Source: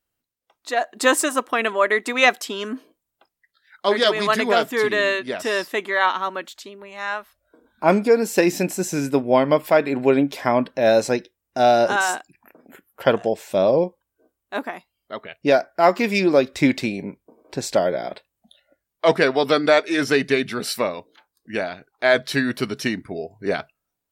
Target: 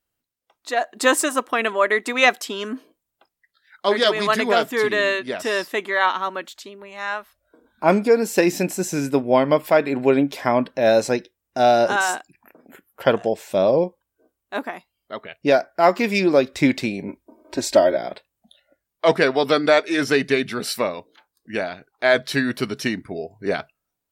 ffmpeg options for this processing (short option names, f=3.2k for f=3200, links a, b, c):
-filter_complex "[0:a]asettb=1/sr,asplit=3[a][b][c];[a]atrim=end=17.084[d];[b]atrim=start=17.08:end=17.97,asetpts=PTS-STARTPTS,afade=t=in:d=0.004:c=qsin,afade=t=out:st=0.886:d=0.004:c=qsin,aecho=1:1:3.2:0.99,atrim=end_sample=39249[e];[c]atrim=start=17.966[f];[d][e]acrossfade=d=0.004:c1=hsin:c2=qsin[g];[g][f]acrossfade=d=0.004:c1=qsin:c2=hsin"